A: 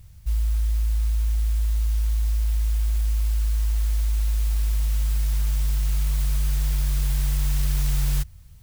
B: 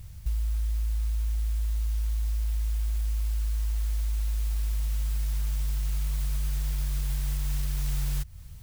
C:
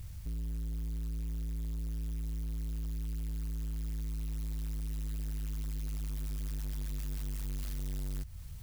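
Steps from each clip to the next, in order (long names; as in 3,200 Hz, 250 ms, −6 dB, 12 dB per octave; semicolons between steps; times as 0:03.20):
downward compressor 5 to 1, threshold −30 dBFS, peak gain reduction 11 dB; level +3.5 dB
soft clipping −34.5 dBFS, distortion −10 dB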